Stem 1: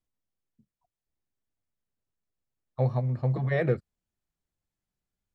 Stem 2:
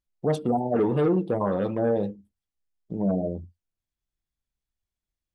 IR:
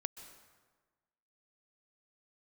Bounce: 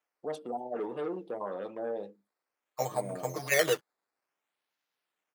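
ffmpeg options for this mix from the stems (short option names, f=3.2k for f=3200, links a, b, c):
-filter_complex "[0:a]tiltshelf=f=800:g=-4,aecho=1:1:6.6:0.78,acrusher=samples=10:mix=1:aa=0.000001:lfo=1:lforange=10:lforate=0.57,volume=1dB[a];[1:a]volume=-9dB[b];[a][b]amix=inputs=2:normalize=0,highpass=400"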